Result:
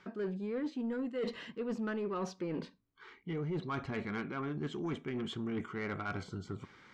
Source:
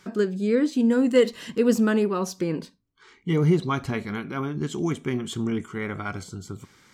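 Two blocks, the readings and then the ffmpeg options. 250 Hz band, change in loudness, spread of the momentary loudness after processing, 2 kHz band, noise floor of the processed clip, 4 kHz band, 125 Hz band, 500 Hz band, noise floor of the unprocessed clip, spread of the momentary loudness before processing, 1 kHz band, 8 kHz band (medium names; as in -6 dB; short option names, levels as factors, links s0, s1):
-14.0 dB, -14.0 dB, 7 LU, -9.5 dB, -65 dBFS, -11.5 dB, -13.5 dB, -14.0 dB, -61 dBFS, 13 LU, -9.5 dB, -19.5 dB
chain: -af "lowpass=2900,lowshelf=f=260:g=-5.5,areverse,acompressor=threshold=0.0251:ratio=8,areverse,asoftclip=type=tanh:threshold=0.0355"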